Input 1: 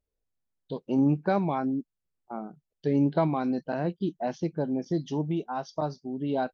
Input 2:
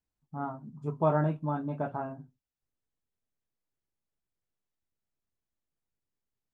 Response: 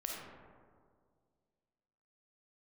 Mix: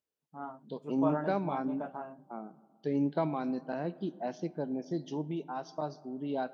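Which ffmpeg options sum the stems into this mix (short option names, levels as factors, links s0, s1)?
-filter_complex "[0:a]highpass=160,volume=0.473,asplit=2[s0][s1];[s1]volume=0.158[s2];[1:a]highpass=260,equalizer=f=3000:t=o:w=0.21:g=6,volume=0.531[s3];[2:a]atrim=start_sample=2205[s4];[s2][s4]afir=irnorm=-1:irlink=0[s5];[s0][s3][s5]amix=inputs=3:normalize=0"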